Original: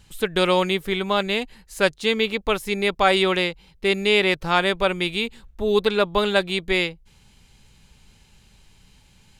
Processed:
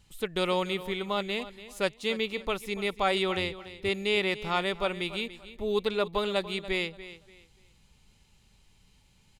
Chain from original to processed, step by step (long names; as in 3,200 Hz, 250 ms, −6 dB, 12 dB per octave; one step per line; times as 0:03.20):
0:03.36–0:03.89: sub-octave generator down 2 octaves, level −5 dB
notch filter 1,600 Hz, Q 10
repeating echo 288 ms, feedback 26%, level −15 dB
level −8.5 dB